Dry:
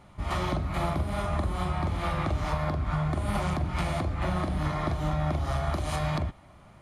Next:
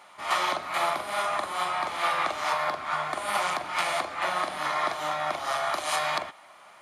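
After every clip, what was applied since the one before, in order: HPF 830 Hz 12 dB/oct; gain +8.5 dB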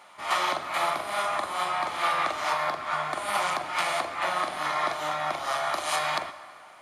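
plate-style reverb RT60 2.3 s, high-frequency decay 0.65×, DRR 13 dB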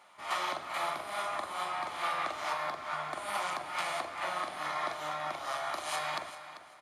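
feedback echo 0.391 s, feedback 24%, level -14 dB; gain -7.5 dB

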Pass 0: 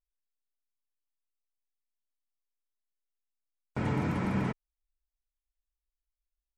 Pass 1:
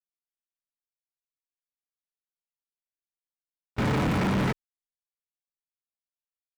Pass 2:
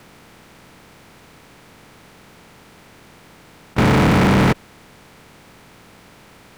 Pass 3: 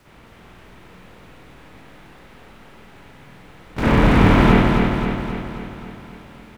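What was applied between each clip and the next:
sample leveller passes 5; gate with hold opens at -20 dBFS; gain -2.5 dB
per-bin compression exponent 0.4; gain +8 dB
octaver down 2 oct, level -1 dB; feedback echo 0.266 s, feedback 58%, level -4 dB; reverb, pre-delay 49 ms, DRR -8 dB; gain -9.5 dB

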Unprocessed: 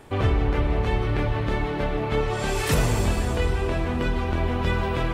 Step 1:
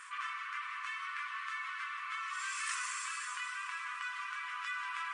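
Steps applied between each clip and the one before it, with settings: FFT band-pass 1000–10000 Hz; bell 3800 Hz -9 dB 0.85 oct; fast leveller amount 50%; gain -7.5 dB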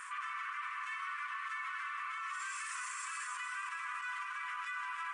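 bell 4100 Hz -8 dB 1.4 oct; limiter -38 dBFS, peak gain reduction 11 dB; gain +5.5 dB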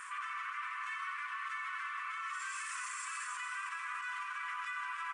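echo 87 ms -10.5 dB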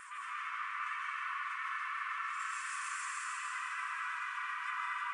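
vibrato 8.8 Hz 49 cents; digital reverb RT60 2.8 s, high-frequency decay 0.55×, pre-delay 0.11 s, DRR -4 dB; gain -4 dB

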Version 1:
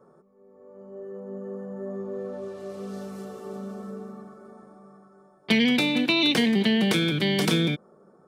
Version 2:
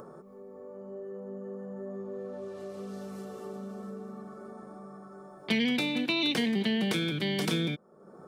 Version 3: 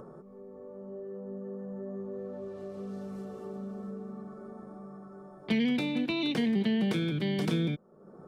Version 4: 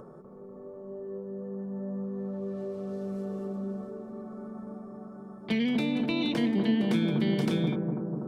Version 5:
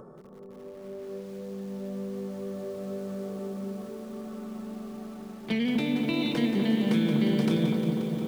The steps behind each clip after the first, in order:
upward compressor, threshold -28 dBFS; gain -6.5 dB
tilt -2 dB/oct; gain -3 dB
analogue delay 0.245 s, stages 2048, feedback 73%, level -4 dB
lo-fi delay 0.177 s, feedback 80%, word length 8-bit, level -9 dB

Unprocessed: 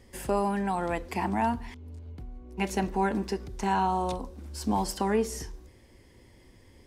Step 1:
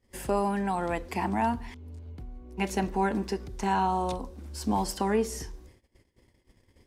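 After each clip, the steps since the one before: gate -53 dBFS, range -21 dB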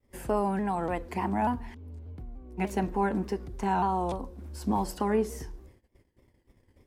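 bell 5400 Hz -8 dB 2.5 oct; shaped vibrato saw down 3.4 Hz, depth 100 cents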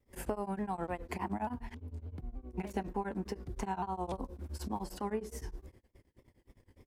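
compressor 6:1, threshold -33 dBFS, peak gain reduction 11 dB; beating tremolo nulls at 9.7 Hz; gain +2 dB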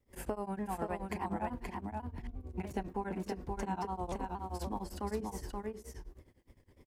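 echo 0.527 s -3.5 dB; gain -1.5 dB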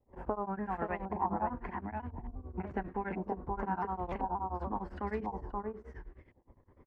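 LFO low-pass saw up 0.95 Hz 810–2300 Hz

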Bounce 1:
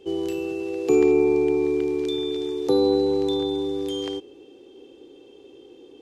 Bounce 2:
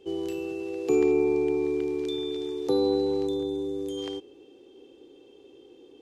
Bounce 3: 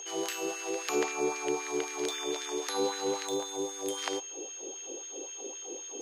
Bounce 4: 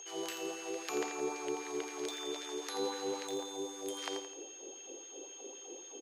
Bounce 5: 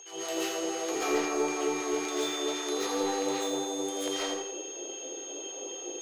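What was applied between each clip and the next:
spectral gain 3.27–3.98, 690–5900 Hz -7 dB; gain -4.5 dB
whine 6500 Hz -41 dBFS; LFO high-pass sine 3.8 Hz 380–1700 Hz; spectral compressor 2:1; gain -5.5 dB
feedback echo 85 ms, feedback 46%, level -9.5 dB; gain -6.5 dB
hard clip -29.5 dBFS, distortion -21 dB; reverb RT60 0.50 s, pre-delay 0.1 s, DRR -9.5 dB

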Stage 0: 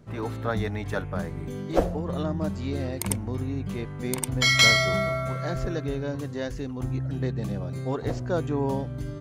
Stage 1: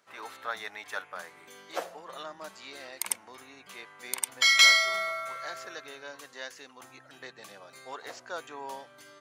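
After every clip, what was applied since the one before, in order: HPF 1100 Hz 12 dB/oct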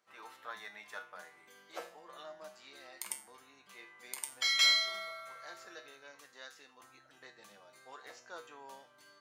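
resonator 69 Hz, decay 0.38 s, harmonics odd, mix 80%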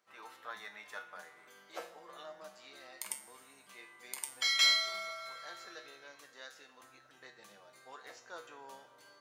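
plate-style reverb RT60 3.9 s, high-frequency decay 0.7×, DRR 13.5 dB

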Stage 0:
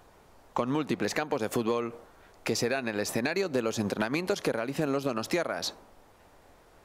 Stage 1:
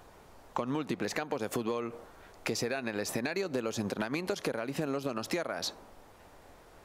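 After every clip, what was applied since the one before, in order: compressor 2:1, threshold -36 dBFS, peak gain reduction 7.5 dB; gain +2 dB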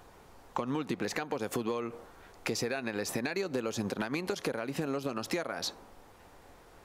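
notch 620 Hz, Q 12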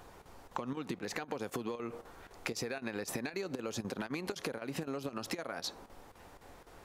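compressor, threshold -35 dBFS, peak gain reduction 7.5 dB; chopper 3.9 Hz, depth 65%, duty 85%; gain +1 dB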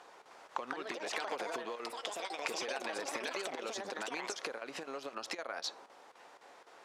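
echoes that change speed 0.31 s, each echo +6 st, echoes 2; BPF 510–7100 Hz; gain +1 dB

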